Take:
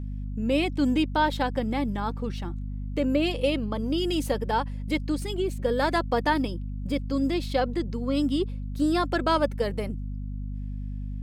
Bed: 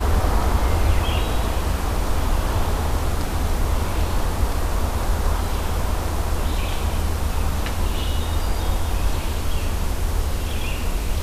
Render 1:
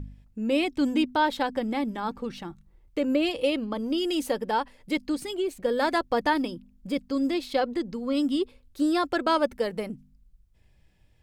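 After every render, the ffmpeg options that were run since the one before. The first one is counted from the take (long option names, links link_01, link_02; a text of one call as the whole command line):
ffmpeg -i in.wav -af "bandreject=frequency=50:width_type=h:width=4,bandreject=frequency=100:width_type=h:width=4,bandreject=frequency=150:width_type=h:width=4,bandreject=frequency=200:width_type=h:width=4,bandreject=frequency=250:width_type=h:width=4" out.wav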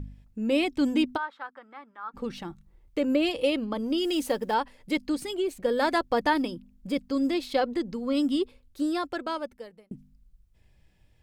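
ffmpeg -i in.wav -filter_complex "[0:a]asplit=3[link_01][link_02][link_03];[link_01]afade=type=out:start_time=1.16:duration=0.02[link_04];[link_02]bandpass=frequency=1300:width_type=q:width=4.7,afade=type=in:start_time=1.16:duration=0.02,afade=type=out:start_time=2.13:duration=0.02[link_05];[link_03]afade=type=in:start_time=2.13:duration=0.02[link_06];[link_04][link_05][link_06]amix=inputs=3:normalize=0,asettb=1/sr,asplit=3[link_07][link_08][link_09];[link_07]atrim=end=4.044[link_10];[link_08]atrim=start=4.04:end=4.54,asetpts=PTS-STARTPTS,afade=type=in:duration=0.004:curve=qsin,afade=type=out:start_time=0.496:duration=0.004:curve=qsin,acrusher=bits=8:mode=log:mix=0:aa=0.000001[link_11];[link_09]atrim=start=4.536[link_12];[link_10][link_11]acrossfade=duration=0.004:curve1=hsin:curve2=qsin[link_13];[link_13][link_12]acrossfade=duration=0.004:curve1=qsin:curve2=hsin,asplit=2[link_14][link_15];[link_14]atrim=end=9.91,asetpts=PTS-STARTPTS,afade=type=out:start_time=8.35:duration=1.56[link_16];[link_15]atrim=start=9.91,asetpts=PTS-STARTPTS,afade=type=in:duration=0.004:curve=hsin[link_17];[link_16][link_17]concat=n=2:v=0:a=1" out.wav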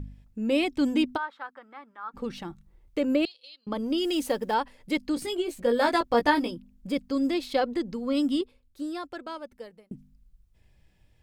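ffmpeg -i in.wav -filter_complex "[0:a]asettb=1/sr,asplit=3[link_01][link_02][link_03];[link_01]atrim=end=3.254[link_04];[link_02]atrim=start=3.25:end=3.67,asetpts=PTS-STARTPTS,afade=type=in:duration=0.004:curve=qsin,afade=type=out:start_time=0.416:duration=0.004:curve=qsin,bandpass=frequency=4200:width_type=q:width=12[link_05];[link_03]atrim=start=3.666[link_06];[link_04][link_05]acrossfade=duration=0.004:curve1=hsin:curve2=qsin[link_07];[link_07][link_06]acrossfade=duration=0.004:curve1=qsin:curve2=hsin,asettb=1/sr,asplit=3[link_08][link_09][link_10];[link_08]atrim=end=5.154[link_11];[link_09]atrim=start=5.15:end=6.51,asetpts=PTS-STARTPTS,afade=type=in:duration=0.004:curve=qsin,afade=type=out:start_time=1.356:duration=0.004:curve=qsin,asplit=2[link_12][link_13];[link_13]adelay=17,volume=-4.5dB[link_14];[link_12][link_14]amix=inputs=2:normalize=0,atrim=end_sample=59976[link_15];[link_10]atrim=start=6.506[link_16];[link_11][link_15]acrossfade=duration=0.004:curve1=hsin:curve2=qsin[link_17];[link_17][link_16]acrossfade=duration=0.004:curve1=qsin:curve2=hsin,asplit=3[link_18][link_19][link_20];[link_18]atrim=end=8.412[link_21];[link_19]atrim=start=8.408:end=9.522,asetpts=PTS-STARTPTS,volume=-6dB[link_22];[link_20]atrim=start=9.518[link_23];[link_21][link_22]acrossfade=duration=0.004:curve1=hsin:curve2=hsin[link_24];[link_24][link_23]acrossfade=duration=0.004:curve1=hsin:curve2=hsin" out.wav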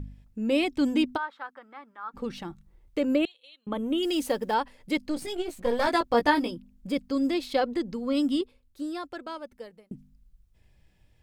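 ffmpeg -i in.wav -filter_complex "[0:a]asettb=1/sr,asplit=3[link_01][link_02][link_03];[link_01]atrim=end=3.184[link_04];[link_02]atrim=start=3.18:end=4.03,asetpts=PTS-STARTPTS,afade=type=in:duration=0.004:curve=qsin,afade=type=out:start_time=0.846:duration=0.004:curve=qsin,asuperstop=centerf=4900:order=4:qfactor=2[link_05];[link_03]atrim=start=4.026[link_06];[link_04][link_05]acrossfade=duration=0.004:curve1=hsin:curve2=qsin[link_07];[link_07][link_06]acrossfade=duration=0.004:curve1=qsin:curve2=hsin,asettb=1/sr,asplit=3[link_08][link_09][link_10];[link_08]atrim=end=5.064[link_11];[link_09]atrim=start=5.06:end=5.87,asetpts=PTS-STARTPTS,afade=type=in:duration=0.004:curve=qsin,afade=type=out:start_time=0.806:duration=0.004:curve=qsin,aeval=exprs='if(lt(val(0),0),0.447*val(0),val(0))':channel_layout=same[link_12];[link_10]atrim=start=5.866[link_13];[link_11][link_12]acrossfade=duration=0.004:curve1=hsin:curve2=qsin[link_14];[link_14][link_13]acrossfade=duration=0.004:curve1=qsin:curve2=hsin" out.wav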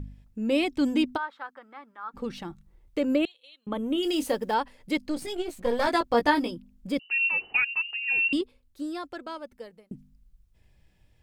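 ffmpeg -i in.wav -filter_complex "[0:a]asettb=1/sr,asplit=3[link_01][link_02][link_03];[link_01]atrim=end=3.934[link_04];[link_02]atrim=start=3.93:end=4.35,asetpts=PTS-STARTPTS,afade=type=in:duration=0.004:curve=qsin,afade=type=out:start_time=0.416:duration=0.004:curve=qsin,asplit=2[link_05][link_06];[link_06]adelay=26,volume=-11dB[link_07];[link_05][link_07]amix=inputs=2:normalize=0,atrim=end_sample=18522[link_08];[link_03]atrim=start=4.346[link_09];[link_04][link_08]acrossfade=duration=0.004:curve1=hsin:curve2=qsin[link_10];[link_10][link_09]acrossfade=duration=0.004:curve1=qsin:curve2=hsin,asettb=1/sr,asplit=3[link_11][link_12][link_13];[link_11]atrim=end=6.994[link_14];[link_12]atrim=start=6.99:end=8.33,asetpts=PTS-STARTPTS,afade=type=in:duration=0.004:curve=qsin,afade=type=out:start_time=1.336:duration=0.004:curve=qsin,lowpass=frequency=2600:width_type=q:width=0.5098,lowpass=frequency=2600:width_type=q:width=0.6013,lowpass=frequency=2600:width_type=q:width=0.9,lowpass=frequency=2600:width_type=q:width=2.563,afreqshift=-3000[link_15];[link_13]atrim=start=8.326[link_16];[link_14][link_15]acrossfade=duration=0.004:curve1=hsin:curve2=qsin[link_17];[link_17][link_16]acrossfade=duration=0.004:curve1=qsin:curve2=hsin" out.wav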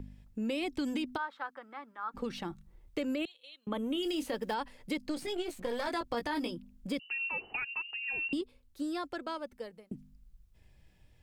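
ffmpeg -i in.wav -filter_complex "[0:a]alimiter=limit=-19.5dB:level=0:latency=1:release=43,acrossover=split=200|1400|4300[link_01][link_02][link_03][link_04];[link_01]acompressor=threshold=-46dB:ratio=4[link_05];[link_02]acompressor=threshold=-34dB:ratio=4[link_06];[link_03]acompressor=threshold=-41dB:ratio=4[link_07];[link_04]acompressor=threshold=-50dB:ratio=4[link_08];[link_05][link_06][link_07][link_08]amix=inputs=4:normalize=0" out.wav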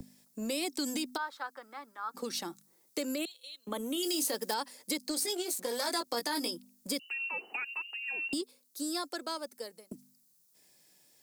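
ffmpeg -i in.wav -filter_complex "[0:a]acrossover=split=200|1600[link_01][link_02][link_03];[link_01]acrusher=bits=5:mix=0:aa=0.5[link_04];[link_04][link_02][link_03]amix=inputs=3:normalize=0,aexciter=amount=4.5:drive=7.5:freq=4200" out.wav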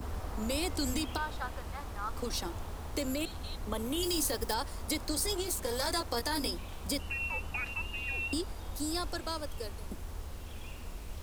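ffmpeg -i in.wav -i bed.wav -filter_complex "[1:a]volume=-19.5dB[link_01];[0:a][link_01]amix=inputs=2:normalize=0" out.wav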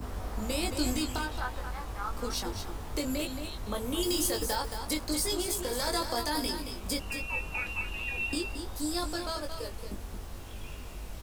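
ffmpeg -i in.wav -filter_complex "[0:a]asplit=2[link_01][link_02];[link_02]adelay=20,volume=-4dB[link_03];[link_01][link_03]amix=inputs=2:normalize=0,asplit=2[link_04][link_05];[link_05]aecho=0:1:224:0.398[link_06];[link_04][link_06]amix=inputs=2:normalize=0" out.wav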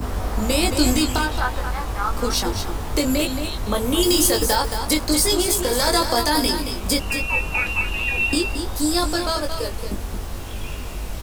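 ffmpeg -i in.wav -af "volume=12dB" out.wav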